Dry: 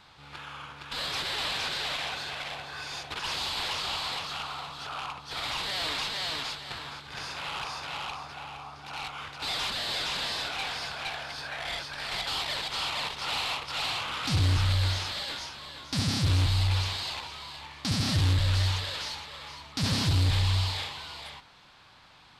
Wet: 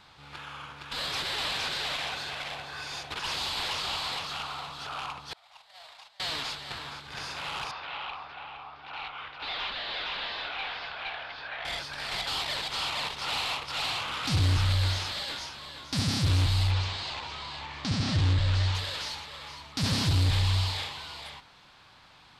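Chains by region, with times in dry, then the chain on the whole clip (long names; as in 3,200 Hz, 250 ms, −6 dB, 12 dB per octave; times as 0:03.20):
0:05.33–0:06.20: noise gate −30 dBFS, range −28 dB + low shelf with overshoot 490 Hz −11.5 dB, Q 3 + downward compressor 10 to 1, threshold −45 dBFS
0:07.71–0:11.65: low-pass filter 3,600 Hz 24 dB per octave + parametric band 130 Hz −11 dB 2.6 octaves
0:16.71–0:18.75: low-pass filter 8,300 Hz 24 dB per octave + high-shelf EQ 5,500 Hz −8.5 dB + upward compression, threshold −31 dBFS
whole clip: no processing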